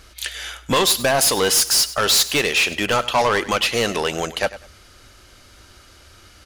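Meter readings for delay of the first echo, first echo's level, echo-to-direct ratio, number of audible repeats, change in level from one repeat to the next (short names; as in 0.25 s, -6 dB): 99 ms, -16.0 dB, -16.0 dB, 2, -12.0 dB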